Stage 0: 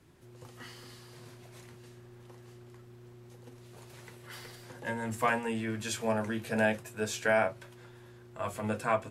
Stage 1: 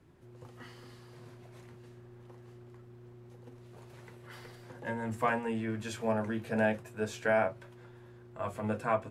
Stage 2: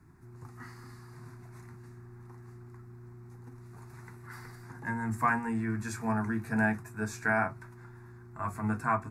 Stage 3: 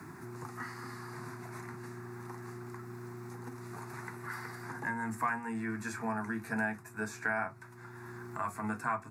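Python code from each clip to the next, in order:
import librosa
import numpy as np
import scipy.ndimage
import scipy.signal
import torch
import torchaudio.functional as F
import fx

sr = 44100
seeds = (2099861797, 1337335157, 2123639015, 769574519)

y1 = fx.high_shelf(x, sr, hz=2600.0, db=-10.5)
y2 = fx.fixed_phaser(y1, sr, hz=1300.0, stages=4)
y2 = y2 * librosa.db_to_amplitude(5.5)
y3 = scipy.signal.sosfilt(scipy.signal.butter(2, 120.0, 'highpass', fs=sr, output='sos'), y2)
y3 = fx.low_shelf(y3, sr, hz=340.0, db=-6.5)
y3 = fx.band_squash(y3, sr, depth_pct=70)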